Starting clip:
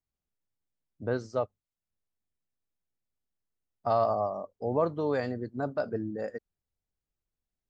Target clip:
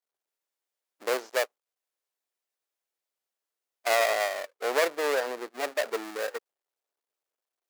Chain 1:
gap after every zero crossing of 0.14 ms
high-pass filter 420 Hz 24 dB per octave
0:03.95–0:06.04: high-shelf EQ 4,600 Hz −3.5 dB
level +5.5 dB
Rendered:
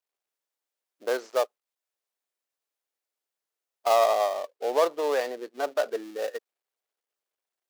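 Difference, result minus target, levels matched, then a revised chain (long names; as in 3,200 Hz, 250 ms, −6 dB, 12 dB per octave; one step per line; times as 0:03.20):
gap after every zero crossing: distortion −13 dB
gap after every zero crossing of 0.39 ms
high-pass filter 420 Hz 24 dB per octave
0:03.95–0:06.04: high-shelf EQ 4,600 Hz −3.5 dB
level +5.5 dB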